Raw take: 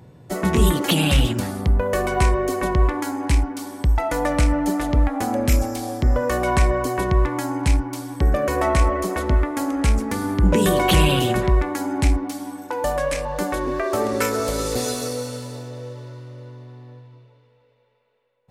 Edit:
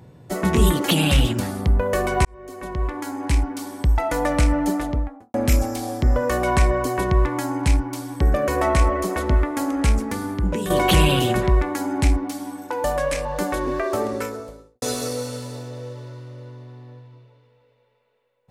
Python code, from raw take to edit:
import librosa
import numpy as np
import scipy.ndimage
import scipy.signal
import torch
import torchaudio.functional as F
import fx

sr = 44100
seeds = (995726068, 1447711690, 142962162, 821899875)

y = fx.studio_fade_out(x, sr, start_s=4.64, length_s=0.7)
y = fx.studio_fade_out(y, sr, start_s=13.72, length_s=1.1)
y = fx.edit(y, sr, fx.fade_in_span(start_s=2.25, length_s=1.28),
    fx.fade_out_to(start_s=9.9, length_s=0.8, floor_db=-10.5), tone=tone)